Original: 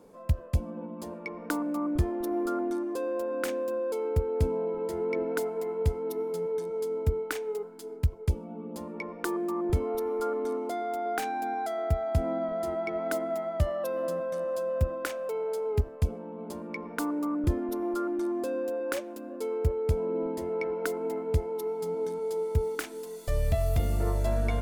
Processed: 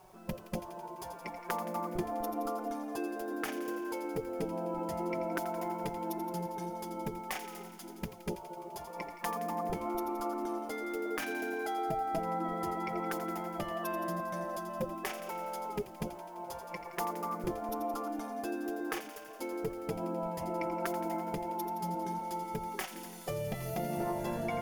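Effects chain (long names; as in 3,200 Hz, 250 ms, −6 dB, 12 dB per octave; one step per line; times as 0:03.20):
gate on every frequency bin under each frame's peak −10 dB weak
thirty-one-band graphic EQ 100 Hz +10 dB, 400 Hz +6 dB, 800 Hz +8 dB, 4,000 Hz −7 dB, 8,000 Hz −9 dB
downward compressor 4 to 1, threshold −34 dBFS, peak gain reduction 6.5 dB
flanger 0.13 Hz, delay 5.3 ms, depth 1.1 ms, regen −4%
bit-depth reduction 12 bits, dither none
delay with a high-pass on its return 85 ms, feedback 72%, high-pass 2,300 Hz, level −9 dB
level +5.5 dB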